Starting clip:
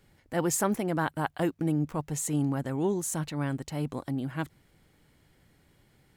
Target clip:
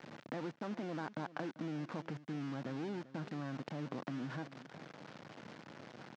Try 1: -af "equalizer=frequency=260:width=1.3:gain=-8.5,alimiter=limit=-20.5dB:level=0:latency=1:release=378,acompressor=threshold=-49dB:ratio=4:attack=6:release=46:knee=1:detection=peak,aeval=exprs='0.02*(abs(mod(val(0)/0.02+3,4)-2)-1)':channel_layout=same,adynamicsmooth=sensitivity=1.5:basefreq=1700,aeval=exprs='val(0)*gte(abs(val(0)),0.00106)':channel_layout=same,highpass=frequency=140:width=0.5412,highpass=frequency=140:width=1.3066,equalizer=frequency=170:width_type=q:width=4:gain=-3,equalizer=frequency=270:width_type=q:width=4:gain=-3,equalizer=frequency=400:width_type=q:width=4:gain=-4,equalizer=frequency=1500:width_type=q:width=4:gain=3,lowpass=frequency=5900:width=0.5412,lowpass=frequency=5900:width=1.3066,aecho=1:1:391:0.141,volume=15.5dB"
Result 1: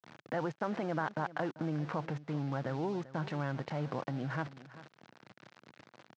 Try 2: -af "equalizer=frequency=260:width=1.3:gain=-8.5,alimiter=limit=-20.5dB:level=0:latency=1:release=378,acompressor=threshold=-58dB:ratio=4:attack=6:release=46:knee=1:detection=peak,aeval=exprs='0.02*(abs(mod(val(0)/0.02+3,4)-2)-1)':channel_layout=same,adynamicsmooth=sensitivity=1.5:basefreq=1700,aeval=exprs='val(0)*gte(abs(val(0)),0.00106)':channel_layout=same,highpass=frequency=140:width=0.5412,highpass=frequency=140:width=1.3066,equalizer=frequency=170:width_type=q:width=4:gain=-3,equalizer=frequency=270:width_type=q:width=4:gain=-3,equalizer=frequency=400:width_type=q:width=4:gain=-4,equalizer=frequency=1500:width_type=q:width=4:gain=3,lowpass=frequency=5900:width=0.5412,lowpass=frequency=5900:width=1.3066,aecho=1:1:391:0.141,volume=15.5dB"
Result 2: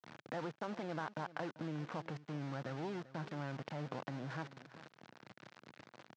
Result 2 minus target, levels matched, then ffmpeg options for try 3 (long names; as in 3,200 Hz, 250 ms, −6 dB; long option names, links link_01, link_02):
250 Hz band −3.5 dB
-af "equalizer=frequency=260:width=1.3:gain=3.5,alimiter=limit=-20.5dB:level=0:latency=1:release=378,acompressor=threshold=-58dB:ratio=4:attack=6:release=46:knee=1:detection=peak,aeval=exprs='0.02*(abs(mod(val(0)/0.02+3,4)-2)-1)':channel_layout=same,adynamicsmooth=sensitivity=1.5:basefreq=1700,aeval=exprs='val(0)*gte(abs(val(0)),0.00106)':channel_layout=same,highpass=frequency=140:width=0.5412,highpass=frequency=140:width=1.3066,equalizer=frequency=170:width_type=q:width=4:gain=-3,equalizer=frequency=270:width_type=q:width=4:gain=-3,equalizer=frequency=400:width_type=q:width=4:gain=-4,equalizer=frequency=1500:width_type=q:width=4:gain=3,lowpass=frequency=5900:width=0.5412,lowpass=frequency=5900:width=1.3066,aecho=1:1:391:0.141,volume=15.5dB"